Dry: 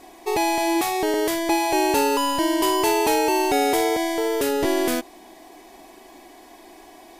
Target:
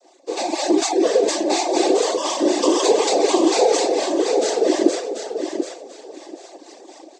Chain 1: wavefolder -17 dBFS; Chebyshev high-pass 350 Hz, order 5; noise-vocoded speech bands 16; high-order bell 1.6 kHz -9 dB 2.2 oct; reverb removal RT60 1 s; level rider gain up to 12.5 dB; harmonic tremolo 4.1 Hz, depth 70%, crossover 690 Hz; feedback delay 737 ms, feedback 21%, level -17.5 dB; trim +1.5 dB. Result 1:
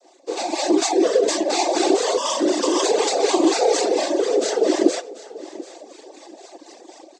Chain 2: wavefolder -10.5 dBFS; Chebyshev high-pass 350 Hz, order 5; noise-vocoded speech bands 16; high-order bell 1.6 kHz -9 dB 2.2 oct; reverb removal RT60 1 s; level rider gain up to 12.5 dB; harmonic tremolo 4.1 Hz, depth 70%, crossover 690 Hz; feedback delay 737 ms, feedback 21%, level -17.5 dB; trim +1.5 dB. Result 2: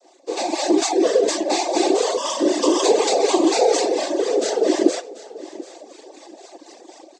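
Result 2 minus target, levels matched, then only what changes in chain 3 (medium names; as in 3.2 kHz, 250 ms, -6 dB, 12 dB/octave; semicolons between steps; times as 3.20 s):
echo-to-direct -10 dB
change: feedback delay 737 ms, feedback 21%, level -7.5 dB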